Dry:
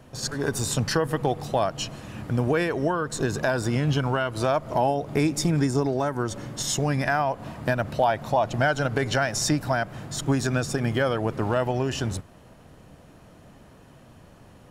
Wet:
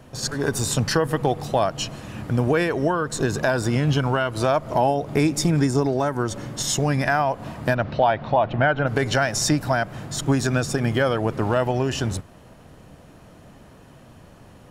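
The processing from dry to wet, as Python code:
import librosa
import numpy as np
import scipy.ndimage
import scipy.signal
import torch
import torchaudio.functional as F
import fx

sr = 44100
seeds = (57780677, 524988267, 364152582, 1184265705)

y = fx.lowpass(x, sr, hz=fx.line((7.74, 5200.0), (8.86, 2700.0)), slope=24, at=(7.74, 8.86), fade=0.02)
y = y * librosa.db_to_amplitude(3.0)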